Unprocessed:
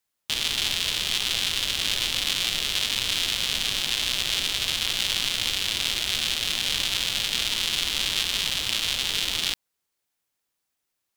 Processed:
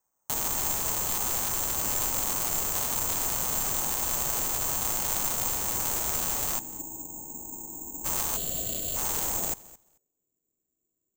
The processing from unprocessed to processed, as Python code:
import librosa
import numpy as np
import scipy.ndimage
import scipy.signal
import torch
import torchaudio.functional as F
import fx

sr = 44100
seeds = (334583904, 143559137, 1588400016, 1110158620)

p1 = fx.filter_sweep_lowpass(x, sr, from_hz=960.0, to_hz=350.0, start_s=9.2, end_s=10.33, q=2.1)
p2 = fx.formant_cascade(p1, sr, vowel='u', at=(6.58, 8.04), fade=0.02)
p3 = (np.mod(10.0 ** (35.0 / 20.0) * p2 + 1.0, 2.0) - 1.0) / 10.0 ** (35.0 / 20.0)
p4 = p2 + (p3 * librosa.db_to_amplitude(-8.0))
p5 = fx.spec_erase(p4, sr, start_s=8.37, length_s=0.59, low_hz=740.0, high_hz=2700.0)
p6 = p5 + fx.echo_feedback(p5, sr, ms=219, feedback_pct=15, wet_db=-20.0, dry=0)
y = (np.kron(p6[::6], np.eye(6)[0]) * 6)[:len(p6)]